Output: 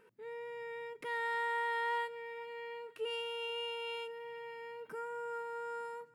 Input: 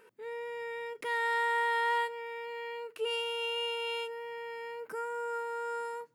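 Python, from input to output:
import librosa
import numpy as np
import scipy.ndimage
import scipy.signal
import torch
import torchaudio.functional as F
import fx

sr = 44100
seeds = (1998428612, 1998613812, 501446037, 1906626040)

y = fx.bass_treble(x, sr, bass_db=9, treble_db=-4)
y = fx.echo_feedback(y, sr, ms=466, feedback_pct=51, wet_db=-23.5)
y = y * librosa.db_to_amplitude(-5.5)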